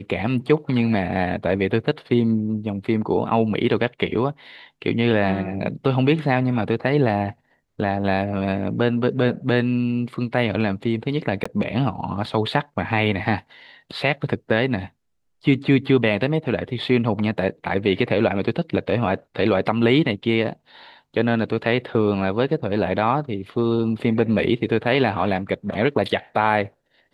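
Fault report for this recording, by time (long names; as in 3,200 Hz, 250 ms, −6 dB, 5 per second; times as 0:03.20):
0:11.44–0:11.46: drop-out 15 ms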